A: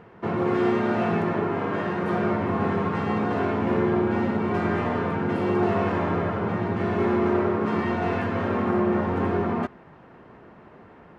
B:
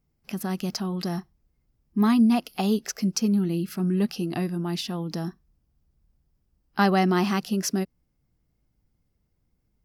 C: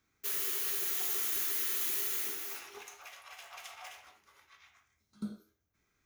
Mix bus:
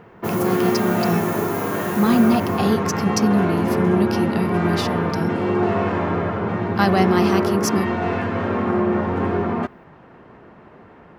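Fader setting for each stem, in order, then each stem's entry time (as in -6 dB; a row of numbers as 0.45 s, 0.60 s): +3.0 dB, +3.0 dB, -2.5 dB; 0.00 s, 0.00 s, 0.00 s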